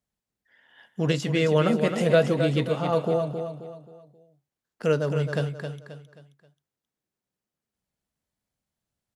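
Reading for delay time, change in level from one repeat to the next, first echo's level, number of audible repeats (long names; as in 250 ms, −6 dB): 266 ms, −8.5 dB, −7.5 dB, 4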